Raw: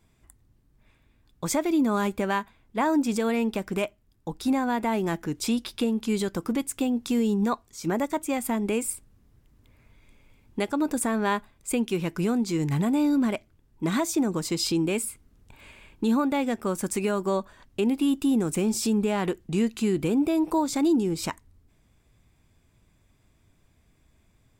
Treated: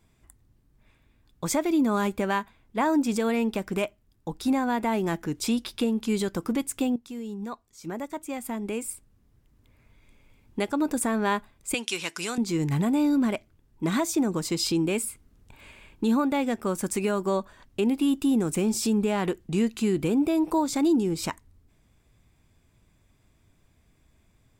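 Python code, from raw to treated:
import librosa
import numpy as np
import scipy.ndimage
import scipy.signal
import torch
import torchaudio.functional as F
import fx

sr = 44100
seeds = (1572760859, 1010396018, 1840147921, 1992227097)

y = fx.weighting(x, sr, curve='ITU-R 468', at=(11.74, 12.38))
y = fx.edit(y, sr, fx.fade_in_from(start_s=6.96, length_s=3.78, floor_db=-14.0), tone=tone)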